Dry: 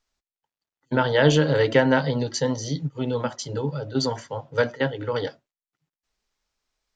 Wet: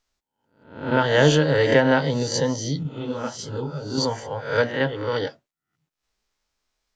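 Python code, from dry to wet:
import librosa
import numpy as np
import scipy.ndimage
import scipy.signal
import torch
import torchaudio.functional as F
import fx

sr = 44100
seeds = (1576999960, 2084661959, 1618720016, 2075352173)

y = fx.spec_swells(x, sr, rise_s=0.53)
y = fx.detune_double(y, sr, cents=50, at=(2.83, 3.98))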